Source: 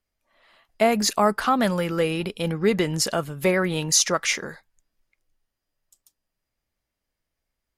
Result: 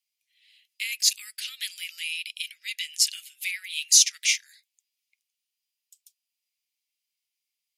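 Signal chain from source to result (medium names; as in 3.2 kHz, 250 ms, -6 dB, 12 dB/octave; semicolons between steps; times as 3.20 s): steep high-pass 2.3 kHz 48 dB/octave; trim +3 dB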